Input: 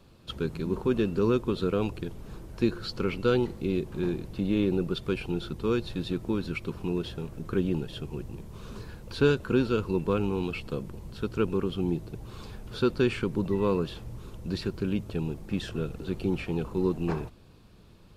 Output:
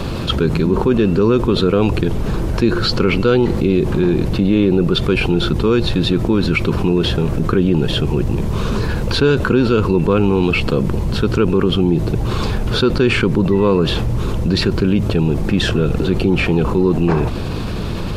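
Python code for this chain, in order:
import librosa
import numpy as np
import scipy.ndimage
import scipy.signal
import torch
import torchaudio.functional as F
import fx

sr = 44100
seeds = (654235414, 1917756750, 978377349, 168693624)

y = fx.high_shelf(x, sr, hz=7100.0, db=-9.0)
y = fx.env_flatten(y, sr, amount_pct=70)
y = y * librosa.db_to_amplitude(7.5)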